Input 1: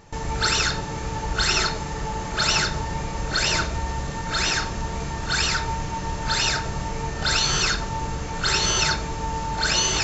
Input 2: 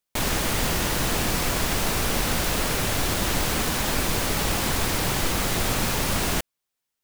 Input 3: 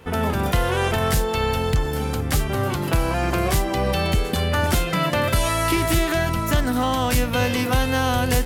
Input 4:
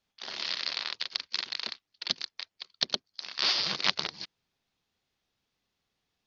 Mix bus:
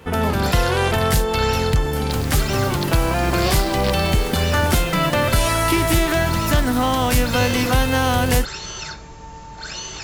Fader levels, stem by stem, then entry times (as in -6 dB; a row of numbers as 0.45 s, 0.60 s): -10.0 dB, -9.5 dB, +2.5 dB, -3.5 dB; 0.00 s, 1.95 s, 0.00 s, 0.00 s